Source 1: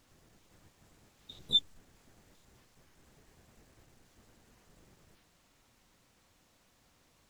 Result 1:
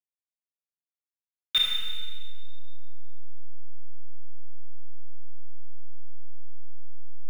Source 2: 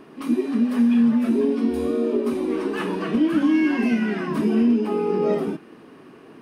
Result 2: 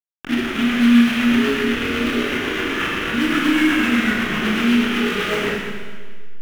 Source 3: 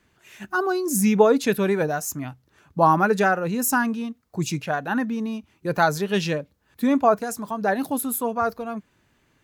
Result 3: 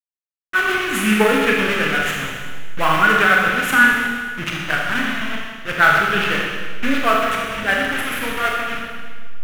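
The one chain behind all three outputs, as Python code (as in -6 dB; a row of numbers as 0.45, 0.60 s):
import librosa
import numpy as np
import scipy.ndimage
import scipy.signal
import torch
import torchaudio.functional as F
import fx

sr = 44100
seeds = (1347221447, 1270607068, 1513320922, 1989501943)

p1 = fx.delta_hold(x, sr, step_db=-22.5)
p2 = fx.band_shelf(p1, sr, hz=2000.0, db=15.5, octaves=1.7)
p3 = fx.backlash(p2, sr, play_db=-18.5)
p4 = p2 + (p3 * 10.0 ** (-6.0 / 20.0))
p5 = fx.rotary(p4, sr, hz=8.0)
p6 = fx.rev_schroeder(p5, sr, rt60_s=1.6, comb_ms=26, drr_db=-2.0)
y = p6 * 10.0 ** (-5.5 / 20.0)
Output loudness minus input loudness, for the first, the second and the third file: +3.0, +3.0, +5.0 LU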